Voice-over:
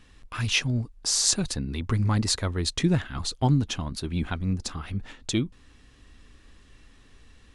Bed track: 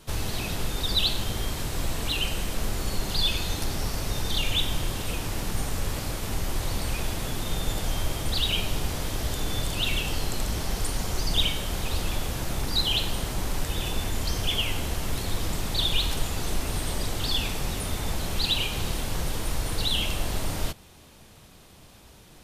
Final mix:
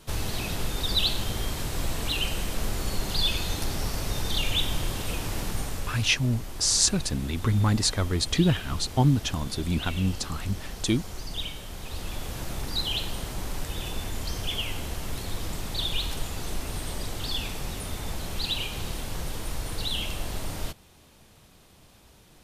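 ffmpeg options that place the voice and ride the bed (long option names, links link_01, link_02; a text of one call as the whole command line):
ffmpeg -i stem1.wav -i stem2.wav -filter_complex "[0:a]adelay=5550,volume=1dB[link_01];[1:a]volume=5dB,afade=type=out:start_time=5.41:duration=0.74:silence=0.354813,afade=type=in:start_time=11.77:duration=0.62:silence=0.530884[link_02];[link_01][link_02]amix=inputs=2:normalize=0" out.wav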